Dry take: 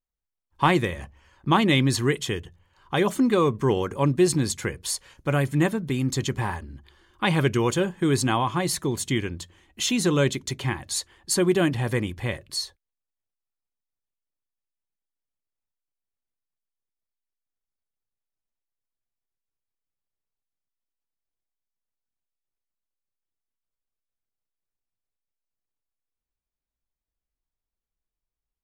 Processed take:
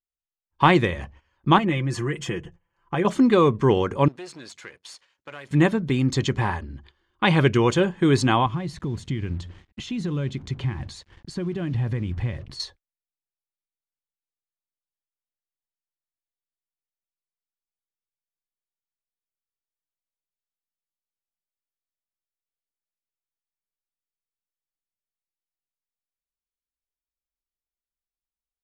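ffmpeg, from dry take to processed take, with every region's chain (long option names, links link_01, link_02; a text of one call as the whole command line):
ffmpeg -i in.wav -filter_complex "[0:a]asettb=1/sr,asplit=3[link_01][link_02][link_03];[link_01]atrim=end=1.584[link_04];[link_02]atrim=start=1.58:end=3.05,asetpts=PTS-STARTPTS,afade=type=in:duration=0.004:curve=qsin,afade=type=out:start_time=1.466:duration=0.004:curve=qsin,equalizer=frequency=3900:width=2.4:gain=-14.5,acompressor=threshold=-29dB:ratio=2.5:attack=3.2:release=140:knee=1:detection=peak,aecho=1:1:5.9:0.64,atrim=end_sample=64827[link_05];[link_03]atrim=start=3.046[link_06];[link_04][link_05]acrossfade=duration=0.004:curve1=hsin:curve2=qsin[link_07];[link_07][link_06]acrossfade=duration=0.004:curve1=qsin:curve2=hsin,asettb=1/sr,asplit=3[link_08][link_09][link_10];[link_08]atrim=end=4.084[link_11];[link_09]atrim=start=4.08:end=5.51,asetpts=PTS-STARTPTS,afade=type=in:duration=0.004:curve=qsin,afade=type=out:start_time=1.426:duration=0.004:curve=qsin,aeval=exprs='if(lt(val(0),0),0.447*val(0),val(0))':channel_layout=same,highpass=frequency=1000:poles=1,acompressor=threshold=-46dB:ratio=2:attack=3.2:release=140:knee=1:detection=peak[link_12];[link_10]atrim=start=5.506[link_13];[link_11][link_12]acrossfade=duration=0.004:curve1=hsin:curve2=qsin[link_14];[link_14][link_13]acrossfade=duration=0.004:curve1=qsin:curve2=hsin,asettb=1/sr,asplit=3[link_15][link_16][link_17];[link_15]atrim=end=8.464[link_18];[link_16]atrim=start=8.46:end=12.6,asetpts=PTS-STARTPTS,afade=type=in:duration=0.004:curve=qsin,afade=type=out:start_time=4.136:duration=0.004:curve=qsin,acompressor=threshold=-39dB:ratio=3:attack=3.2:release=140:knee=1:detection=peak,acrusher=bits=8:mix=0:aa=0.5,bass=frequency=250:gain=12,treble=frequency=4000:gain=-4[link_19];[link_17]atrim=start=12.596[link_20];[link_18][link_19]acrossfade=duration=0.004:curve1=hsin:curve2=qsin[link_21];[link_21][link_20]acrossfade=duration=0.004:curve1=qsin:curve2=hsin,agate=range=-15dB:threshold=-50dB:ratio=16:detection=peak,lowpass=5200,volume=3.5dB" out.wav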